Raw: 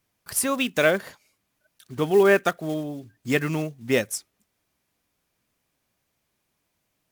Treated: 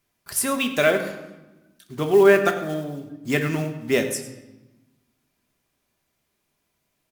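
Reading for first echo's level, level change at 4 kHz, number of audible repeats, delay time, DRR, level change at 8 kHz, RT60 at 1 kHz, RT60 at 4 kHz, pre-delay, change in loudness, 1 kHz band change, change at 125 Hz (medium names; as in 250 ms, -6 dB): -15.0 dB, +1.0 dB, 1, 102 ms, 4.5 dB, +1.0 dB, 1.0 s, 0.85 s, 3 ms, +2.0 dB, +1.5 dB, +2.0 dB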